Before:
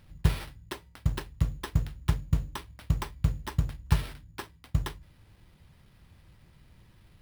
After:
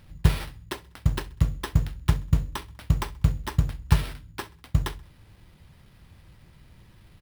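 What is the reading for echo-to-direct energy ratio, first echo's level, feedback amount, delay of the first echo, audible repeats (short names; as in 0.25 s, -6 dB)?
-21.0 dB, -22.0 dB, 46%, 65 ms, 2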